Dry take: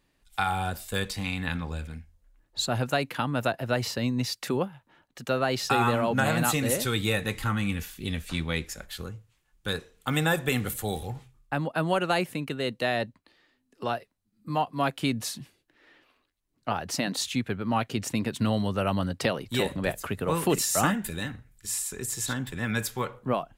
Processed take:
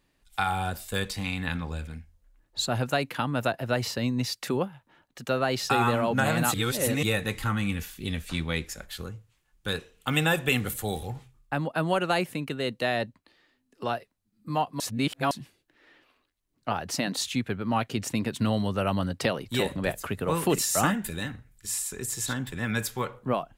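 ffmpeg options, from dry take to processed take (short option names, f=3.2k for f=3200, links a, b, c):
-filter_complex "[0:a]asettb=1/sr,asplit=3[a][b][c];[a]atrim=end=9.724[d];[b]atrim=start=9.72:end=10.57,asetpts=PTS-STARTPTS,afade=t=in:d=0.004:c=qsin,afade=t=out:st=0.846:d=0.004:c=qsin,equalizer=f=2.8k:t=o:w=0.39:g=7.5[e];[c]atrim=start=10.566[f];[d][e]acrossfade=d=0.004:c1=hsin:c2=qsin[g];[g][f]acrossfade=d=0.004:c1=qsin:c2=hsin,asplit=5[h][i][j][k][l];[h]atrim=end=6.542[m];[i]atrim=start=6.538:end=7.032,asetpts=PTS-STARTPTS,areverse[n];[j]atrim=start=7.028:end=14.802[o];[k]atrim=start=14.798:end=15.312,asetpts=PTS-STARTPTS,areverse[p];[l]atrim=start=15.308[q];[m][n]acrossfade=d=0.004:c1=hsin:c2=hsin[r];[r][o]acrossfade=d=0.004:c1=hsin:c2=hsin[s];[s][p]acrossfade=d=0.004:c1=hsin:c2=hsin[t];[t][q]acrossfade=d=0.004:c1=hsin:c2=hsin"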